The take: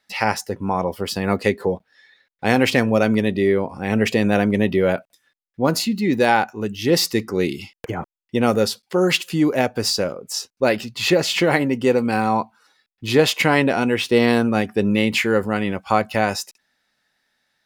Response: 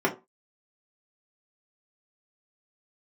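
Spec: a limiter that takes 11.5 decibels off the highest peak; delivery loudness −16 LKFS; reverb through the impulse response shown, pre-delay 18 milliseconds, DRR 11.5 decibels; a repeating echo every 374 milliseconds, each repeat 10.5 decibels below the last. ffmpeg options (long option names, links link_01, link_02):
-filter_complex "[0:a]alimiter=limit=-13.5dB:level=0:latency=1,aecho=1:1:374|748|1122:0.299|0.0896|0.0269,asplit=2[link_01][link_02];[1:a]atrim=start_sample=2205,adelay=18[link_03];[link_02][link_03]afir=irnorm=-1:irlink=0,volume=-25dB[link_04];[link_01][link_04]amix=inputs=2:normalize=0,volume=8dB"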